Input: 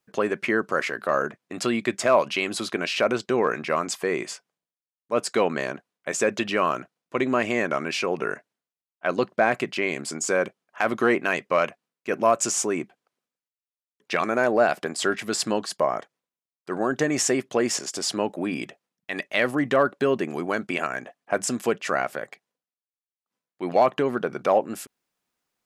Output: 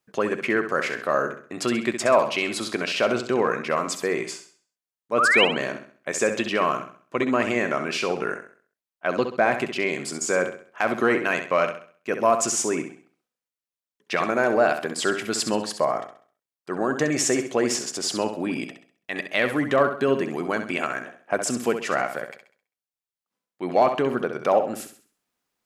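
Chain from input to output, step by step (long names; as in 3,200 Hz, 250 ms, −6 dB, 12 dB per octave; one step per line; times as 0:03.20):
sound drawn into the spectrogram rise, 0:05.18–0:05.45, 1,100–3,300 Hz −19 dBFS
flutter between parallel walls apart 11.3 metres, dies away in 0.46 s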